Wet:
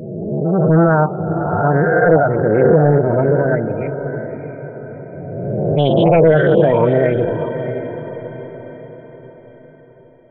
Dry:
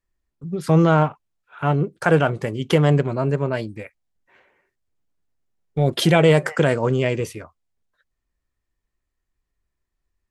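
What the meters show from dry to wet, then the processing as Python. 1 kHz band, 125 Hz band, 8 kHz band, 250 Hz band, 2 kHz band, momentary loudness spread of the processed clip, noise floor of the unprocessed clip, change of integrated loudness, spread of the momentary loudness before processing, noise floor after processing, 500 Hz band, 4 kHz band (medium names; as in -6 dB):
+6.5 dB, +4.0 dB, under -35 dB, +5.5 dB, +4.0 dB, 19 LU, -80 dBFS, +4.5 dB, 15 LU, -43 dBFS, +8.5 dB, -4.5 dB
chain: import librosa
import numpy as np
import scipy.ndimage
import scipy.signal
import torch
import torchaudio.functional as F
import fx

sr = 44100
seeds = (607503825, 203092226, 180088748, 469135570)

p1 = fx.spec_swells(x, sr, rise_s=1.88)
p2 = scipy.signal.sosfilt(scipy.signal.butter(2, 4100.0, 'lowpass', fs=sr, output='sos'), p1)
p3 = fx.dynamic_eq(p2, sr, hz=140.0, q=1.7, threshold_db=-26.0, ratio=4.0, max_db=-3)
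p4 = fx.fold_sine(p3, sr, drive_db=10, ceiling_db=1.5)
p5 = p3 + (p4 * 10.0 ** (-9.0 / 20.0))
p6 = fx.spec_topn(p5, sr, count=16)
p7 = p6 + fx.echo_diffused(p6, sr, ms=647, feedback_pct=46, wet_db=-9.0, dry=0)
p8 = fx.doppler_dist(p7, sr, depth_ms=0.17)
y = p8 * 10.0 ** (-3.0 / 20.0)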